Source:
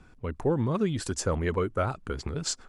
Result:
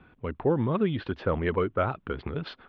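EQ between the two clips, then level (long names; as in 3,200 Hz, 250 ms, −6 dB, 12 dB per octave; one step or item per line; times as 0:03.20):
high-pass filter 110 Hz 6 dB per octave
Butterworth low-pass 3,600 Hz 48 dB per octave
+2.0 dB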